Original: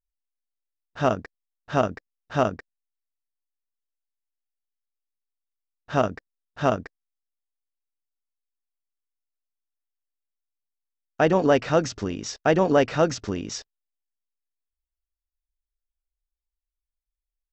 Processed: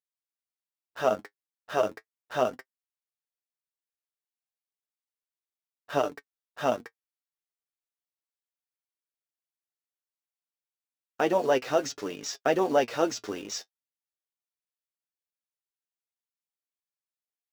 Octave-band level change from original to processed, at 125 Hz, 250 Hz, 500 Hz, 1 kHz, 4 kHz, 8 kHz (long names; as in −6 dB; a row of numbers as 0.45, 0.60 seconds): −15.5 dB, −8.0 dB, −4.0 dB, −4.0 dB, −2.0 dB, can't be measured